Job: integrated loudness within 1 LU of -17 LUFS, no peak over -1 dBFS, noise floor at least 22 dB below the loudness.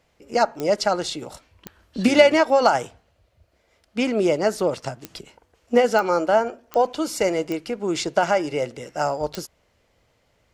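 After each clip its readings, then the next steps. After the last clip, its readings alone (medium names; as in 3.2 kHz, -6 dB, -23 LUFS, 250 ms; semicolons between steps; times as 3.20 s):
clicks found 7; loudness -21.5 LUFS; peak level -1.5 dBFS; loudness target -17.0 LUFS
-> de-click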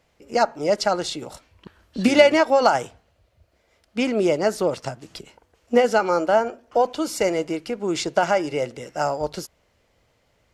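clicks found 0; loudness -21.5 LUFS; peak level -1.5 dBFS; loudness target -17.0 LUFS
-> trim +4.5 dB; peak limiter -1 dBFS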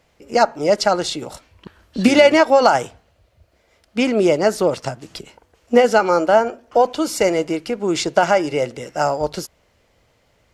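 loudness -17.5 LUFS; peak level -1.0 dBFS; noise floor -61 dBFS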